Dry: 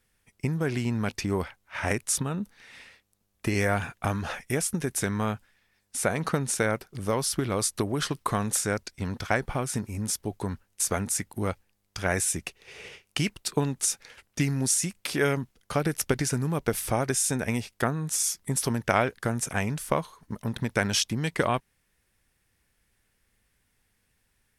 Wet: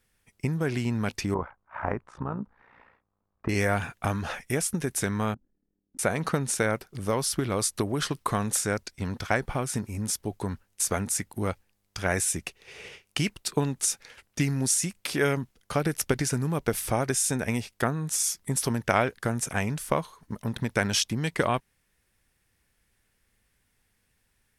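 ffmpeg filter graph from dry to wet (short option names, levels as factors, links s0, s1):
-filter_complex "[0:a]asettb=1/sr,asplit=3[s0][s1][s2];[s0]atrim=end=1.344[s3];[s1]atrim=start=1.34:end=3.49,asetpts=PTS-STARTPTS,afade=t=in:d=0.004:c=qsin,afade=t=out:st=2.146:d=0.004:c=qsin,lowpass=f=1100:t=q:w=2.2,tremolo=f=59:d=0.71[s4];[s2]atrim=start=3.486[s5];[s3][s4]acrossfade=d=0.004:c1=hsin:c2=qsin[s6];[s6][s5]acrossfade=d=0.004:c1=qsin:c2=hsin,asettb=1/sr,asplit=3[s7][s8][s9];[s7]atrim=end=5.344[s10];[s8]atrim=start=5.34:end=5.99,asetpts=PTS-STARTPTS,afade=t=in:d=0.004:c=qsin,afade=t=out:st=0.646:d=0.004:c=qsin,lowpass=f=300:t=q:w=3.1,equalizer=f=93:t=o:w=0.75:g=-9,tremolo=f=38:d=0.75[s11];[s9]atrim=start=5.986[s12];[s10][s11]acrossfade=d=0.004:c1=hsin:c2=qsin[s13];[s13][s12]acrossfade=d=0.004:c1=qsin:c2=hsin"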